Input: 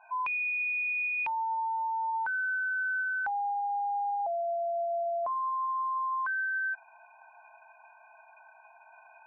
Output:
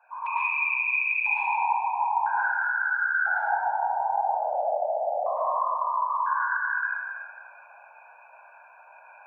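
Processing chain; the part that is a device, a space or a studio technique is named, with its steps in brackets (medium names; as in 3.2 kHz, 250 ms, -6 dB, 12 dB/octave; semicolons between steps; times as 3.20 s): whispering ghost (whisper effect; high-pass 550 Hz 12 dB/octave; reverberation RT60 2.0 s, pre-delay 101 ms, DRR -9 dB); trim -4.5 dB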